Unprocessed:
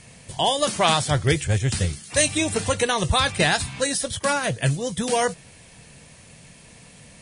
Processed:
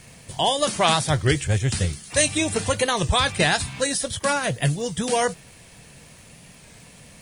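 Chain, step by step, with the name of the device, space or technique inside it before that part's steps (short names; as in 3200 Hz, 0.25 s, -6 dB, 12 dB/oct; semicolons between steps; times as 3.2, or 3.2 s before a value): warped LP (record warp 33 1/3 rpm, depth 100 cents; crackle 77/s -40 dBFS; pink noise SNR 35 dB)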